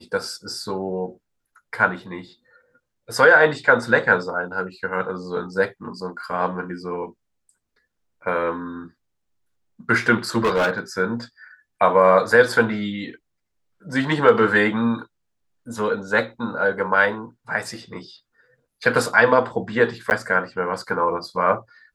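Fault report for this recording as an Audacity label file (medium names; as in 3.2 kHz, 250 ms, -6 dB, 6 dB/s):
10.440000	10.790000	clipped -15.5 dBFS
20.100000	20.110000	dropout 9.9 ms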